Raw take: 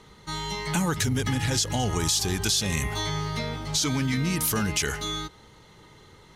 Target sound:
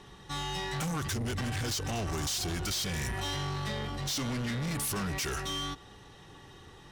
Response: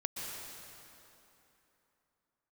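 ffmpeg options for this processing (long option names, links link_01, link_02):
-af "asoftclip=type=tanh:threshold=-30.5dB,asetrate=40517,aresample=44100"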